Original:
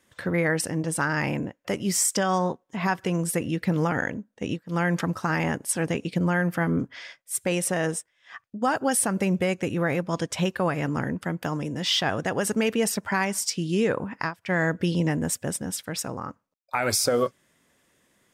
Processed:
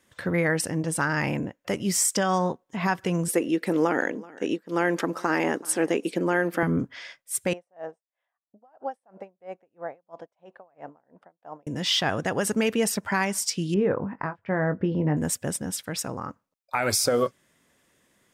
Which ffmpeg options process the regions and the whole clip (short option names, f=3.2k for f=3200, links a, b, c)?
-filter_complex "[0:a]asettb=1/sr,asplit=3[a][b][c];[a]atrim=end=3.284[d];[b]atrim=start=3.28:end=6.63,asetpts=PTS-STARTPTS,afade=t=in:d=0.004:c=qsin,afade=t=out:st=3.346:d=0.004:c=qsin,highpass=f=340:t=q:w=2.1,aecho=1:1:380:0.0841,atrim=end_sample=147735[e];[c]atrim=start=6.626[f];[d][e]acrossfade=d=0.004:c1=hsin:c2=qsin[g];[g][f]acrossfade=d=0.004:c1=qsin:c2=hsin,asettb=1/sr,asplit=3[h][i][j];[h]atrim=end=7.534[k];[i]atrim=start=7.53:end=11.67,asetpts=PTS-STARTPTS,afade=t=in:d=0.004:c=qsin,afade=t=out:st=4.136:d=0.004:c=qsin,bandpass=f=710:t=q:w=2.9,aeval=exprs='val(0)*pow(10,-33*(0.5-0.5*cos(2*PI*3*n/s))/20)':c=same[l];[j]atrim=start=11.666[m];[k][l]acrossfade=d=0.004:c1=hsin:c2=qsin[n];[n][m]acrossfade=d=0.004:c1=qsin:c2=hsin,asettb=1/sr,asplit=3[o][p][q];[o]atrim=end=13.744[r];[p]atrim=start=13.74:end=15.17,asetpts=PTS-STARTPTS,afade=t=in:d=0.004:c=qsin,afade=t=out:st=1.426:d=0.004:c=qsin,lowpass=1.3k,asplit=2[s][t];[t]adelay=20,volume=-9dB[u];[s][u]amix=inputs=2:normalize=0,atrim=end_sample=63063[v];[q]atrim=start=15.166[w];[r][v]acrossfade=d=0.004:c1=hsin:c2=qsin[x];[x][w]acrossfade=d=0.004:c1=qsin:c2=hsin"